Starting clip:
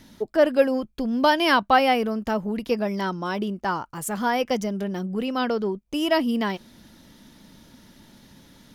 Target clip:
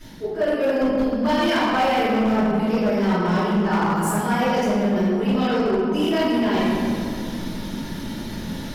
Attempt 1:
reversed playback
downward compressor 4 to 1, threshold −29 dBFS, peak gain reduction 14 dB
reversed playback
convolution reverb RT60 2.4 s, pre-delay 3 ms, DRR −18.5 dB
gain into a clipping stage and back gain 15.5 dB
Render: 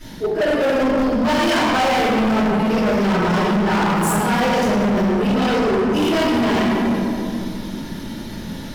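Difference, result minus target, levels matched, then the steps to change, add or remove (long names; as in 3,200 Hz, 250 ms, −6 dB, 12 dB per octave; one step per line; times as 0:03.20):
downward compressor: peak gain reduction −7.5 dB
change: downward compressor 4 to 1, threshold −39 dBFS, peak gain reduction 21.5 dB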